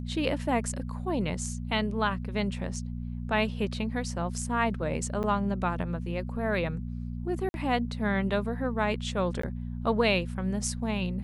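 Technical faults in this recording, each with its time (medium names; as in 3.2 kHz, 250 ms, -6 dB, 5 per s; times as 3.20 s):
hum 60 Hz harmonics 4 -35 dBFS
5.23–5.24 s: dropout 8.7 ms
7.49–7.54 s: dropout 51 ms
9.42–9.43 s: dropout 14 ms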